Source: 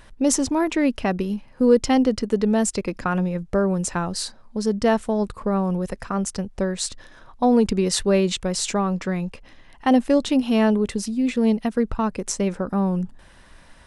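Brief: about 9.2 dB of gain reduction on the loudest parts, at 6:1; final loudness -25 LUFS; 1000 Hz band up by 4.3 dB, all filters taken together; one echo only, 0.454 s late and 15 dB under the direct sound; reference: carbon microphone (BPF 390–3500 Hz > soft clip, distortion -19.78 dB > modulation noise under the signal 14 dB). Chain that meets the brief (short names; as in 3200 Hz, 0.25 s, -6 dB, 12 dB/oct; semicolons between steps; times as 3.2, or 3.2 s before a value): bell 1000 Hz +6 dB; compressor 6:1, threshold -20 dBFS; BPF 390–3500 Hz; echo 0.454 s -15 dB; soft clip -16 dBFS; modulation noise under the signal 14 dB; gain +5.5 dB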